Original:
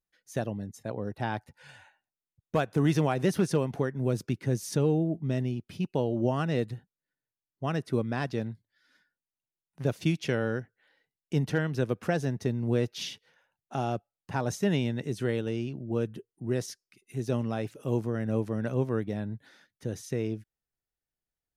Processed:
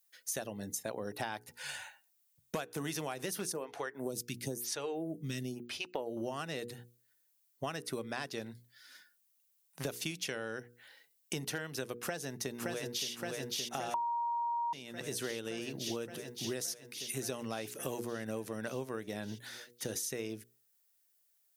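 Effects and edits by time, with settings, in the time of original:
3.52–6.17 s: lamp-driven phase shifter 1 Hz
11.99–13.11 s: echo throw 570 ms, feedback 75%, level -5 dB
13.94–14.73 s: bleep 942 Hz -10.5 dBFS
whole clip: RIAA curve recording; hum notches 60/120/180/240/300/360/420/480 Hz; compression 12:1, threshold -41 dBFS; trim +6.5 dB

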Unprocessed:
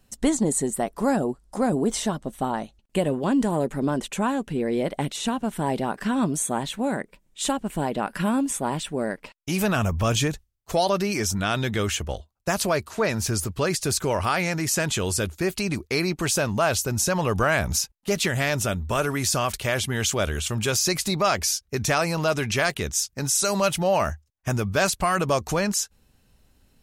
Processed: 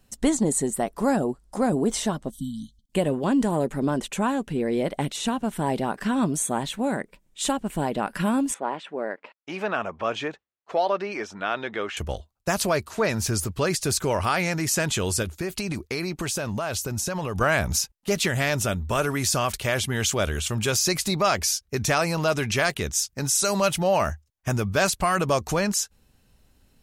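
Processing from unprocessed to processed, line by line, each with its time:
2.31–2.92 s: spectral selection erased 290–3000 Hz
8.54–11.97 s: band-pass 400–2300 Hz
15.22–17.41 s: compression, threshold -24 dBFS

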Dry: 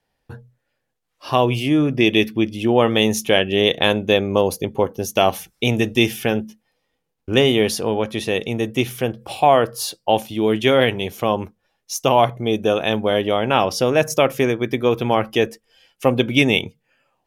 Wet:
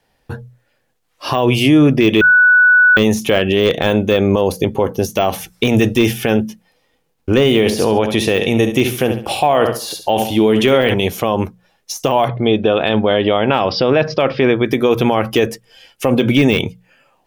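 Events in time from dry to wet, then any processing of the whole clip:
2.21–2.97 s: bleep 1.48 kHz -16.5 dBFS
7.44–10.94 s: feedback delay 69 ms, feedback 33%, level -12 dB
12.28–14.66 s: Chebyshev low-pass 5 kHz, order 6
whole clip: hum notches 60/120/180 Hz; de-esser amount 60%; loudness maximiser +13 dB; trim -2.5 dB

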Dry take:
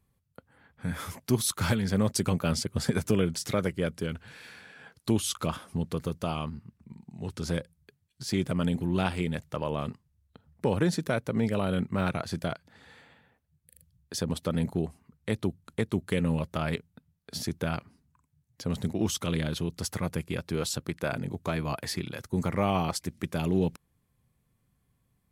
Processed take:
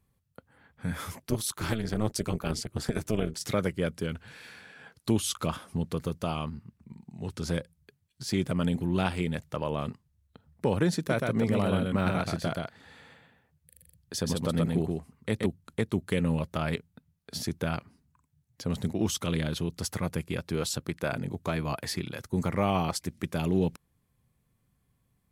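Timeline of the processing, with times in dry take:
1.22–3.41 s: AM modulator 220 Hz, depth 75%
10.97–15.46 s: delay 127 ms -3 dB

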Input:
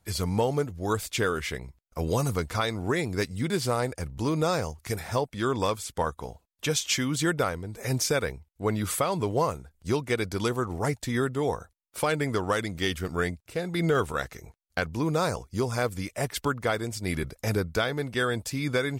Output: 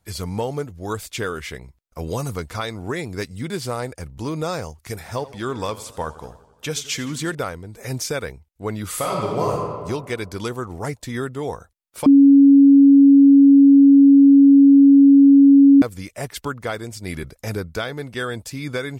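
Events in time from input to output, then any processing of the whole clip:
5.01–7.35 s: modulated delay 86 ms, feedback 64%, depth 131 cents, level -17 dB
8.88–9.52 s: reverb throw, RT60 1.7 s, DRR -2.5 dB
12.06–15.82 s: bleep 278 Hz -6.5 dBFS

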